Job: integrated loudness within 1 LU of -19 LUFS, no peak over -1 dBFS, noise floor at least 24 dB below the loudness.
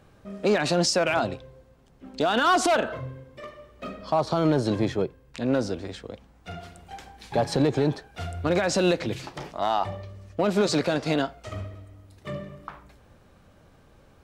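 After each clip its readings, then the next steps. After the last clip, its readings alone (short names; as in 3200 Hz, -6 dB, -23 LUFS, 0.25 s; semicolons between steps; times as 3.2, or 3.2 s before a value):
clipped 0.4%; flat tops at -14.5 dBFS; loudness -25.5 LUFS; peak -14.5 dBFS; loudness target -19.0 LUFS
-> clip repair -14.5 dBFS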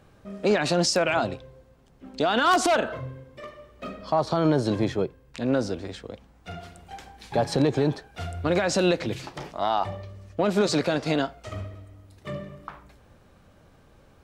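clipped 0.0%; loudness -25.0 LUFS; peak -5.5 dBFS; loudness target -19.0 LUFS
-> gain +6 dB; limiter -1 dBFS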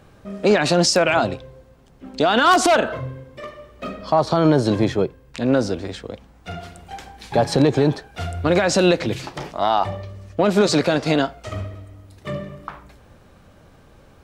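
loudness -19.0 LUFS; peak -1.0 dBFS; noise floor -51 dBFS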